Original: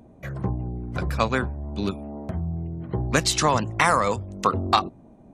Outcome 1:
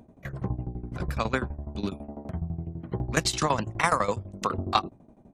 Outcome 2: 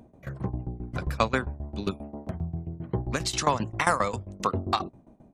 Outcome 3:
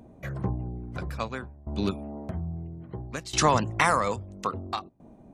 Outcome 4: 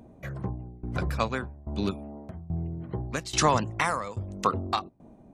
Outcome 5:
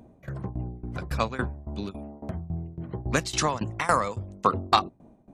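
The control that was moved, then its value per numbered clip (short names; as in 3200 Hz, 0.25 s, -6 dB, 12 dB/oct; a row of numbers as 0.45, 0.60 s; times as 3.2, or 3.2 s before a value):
tremolo, rate: 12, 7.5, 0.6, 1.2, 3.6 Hz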